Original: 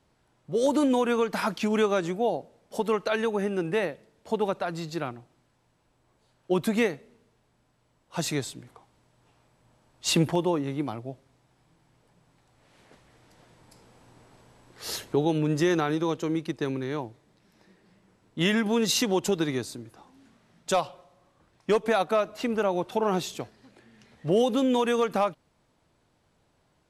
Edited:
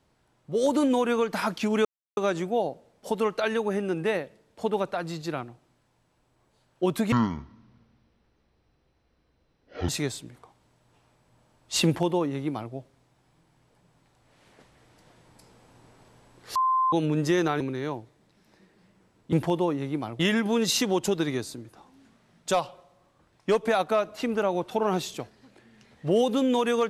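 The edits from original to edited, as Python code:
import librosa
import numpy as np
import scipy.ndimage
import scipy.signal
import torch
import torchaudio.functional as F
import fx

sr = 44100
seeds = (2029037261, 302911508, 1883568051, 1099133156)

y = fx.edit(x, sr, fx.insert_silence(at_s=1.85, length_s=0.32),
    fx.speed_span(start_s=6.8, length_s=1.41, speed=0.51),
    fx.duplicate(start_s=10.18, length_s=0.87, to_s=18.4),
    fx.bleep(start_s=14.88, length_s=0.37, hz=1040.0, db=-20.0),
    fx.cut(start_s=15.93, length_s=0.75), tone=tone)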